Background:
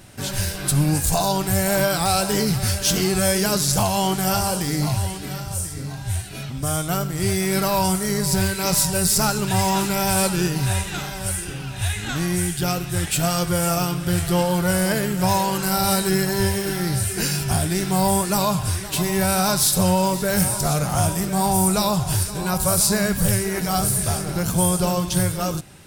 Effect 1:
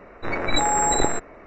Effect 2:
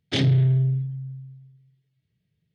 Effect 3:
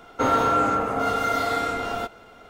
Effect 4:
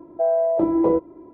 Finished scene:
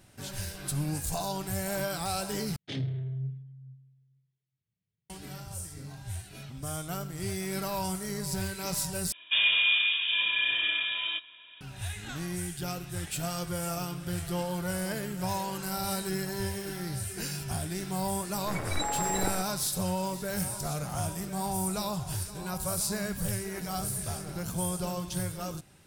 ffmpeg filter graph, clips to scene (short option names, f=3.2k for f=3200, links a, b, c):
-filter_complex "[0:a]volume=-12.5dB[a];[2:a]flanger=delay=4.5:depth=6.2:regen=66:speed=1.1:shape=triangular[b];[3:a]lowpass=f=3.2k:t=q:w=0.5098,lowpass=f=3.2k:t=q:w=0.6013,lowpass=f=3.2k:t=q:w=0.9,lowpass=f=3.2k:t=q:w=2.563,afreqshift=-3800[c];[a]asplit=3[d][e][f];[d]atrim=end=2.564[g];[b]atrim=end=2.54,asetpts=PTS-STARTPTS,volume=-10dB[h];[e]atrim=start=5.096:end=9.124[i];[c]atrim=end=2.49,asetpts=PTS-STARTPTS,volume=-4dB[j];[f]atrim=start=11.606[k];[1:a]atrim=end=1.46,asetpts=PTS-STARTPTS,volume=-10.5dB,afade=t=in:d=0.004:c=hsin,afade=t=out:st=1.456:d=0.004:c=hsin,adelay=18230[l];[g][h]acrossfade=d=0.004:c1=hsin:c2=hsin[m];[m][i]acrossfade=d=0.004:c1=hsin:c2=hsin[n];[n][j]acrossfade=d=0.004:c1=hsin:c2=hsin[o];[o][k]acrossfade=d=0.004:c1=hsin:c2=hsin[p];[p][l]amix=inputs=2:normalize=0"